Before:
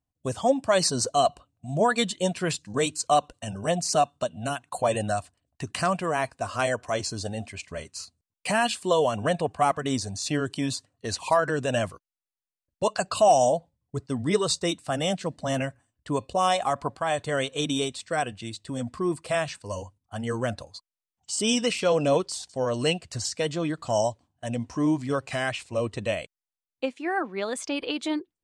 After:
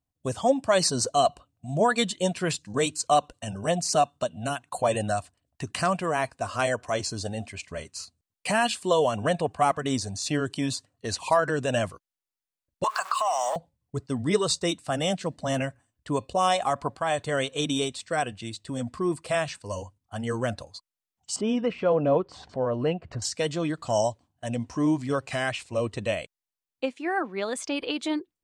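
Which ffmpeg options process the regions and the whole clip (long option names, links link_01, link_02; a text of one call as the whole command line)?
ffmpeg -i in.wav -filter_complex "[0:a]asettb=1/sr,asplit=3[link_01][link_02][link_03];[link_01]atrim=end=12.844[link_04];[link_02]atrim=start=12.84:end=13.56,asetpts=PTS-STARTPTS,afade=type=in:duration=0.004:curve=qsin,afade=type=out:start_time=0.716:duration=0.004:curve=qsin,aeval=exprs='val(0)+0.5*0.0141*sgn(val(0))':channel_layout=same,highpass=frequency=1100:width_type=q:width=6.9,acompressor=threshold=-22dB:ratio=5:attack=3.2:release=140:knee=1:detection=peak[link_05];[link_03]atrim=start=13.556[link_06];[link_04][link_05]acrossfade=duration=0.004:curve1=hsin:curve2=qsin[link_07];[link_07][link_06]acrossfade=duration=0.004:curve1=qsin:curve2=hsin,asettb=1/sr,asplit=3[link_08][link_09][link_10];[link_08]atrim=end=21.364[link_11];[link_09]atrim=start=21.36:end=23.22,asetpts=PTS-STARTPTS,afade=type=in:duration=0.004:curve=qsin,afade=type=out:start_time=1.856:duration=0.004:curve=qsin,lowpass=1400,acompressor=mode=upward:threshold=-33dB:ratio=2.5:attack=3.2:release=140:knee=2.83:detection=peak[link_12];[link_10]atrim=start=23.216[link_13];[link_11][link_12]acrossfade=duration=0.004:curve1=hsin:curve2=qsin[link_14];[link_14][link_13]acrossfade=duration=0.004:curve1=qsin:curve2=hsin" out.wav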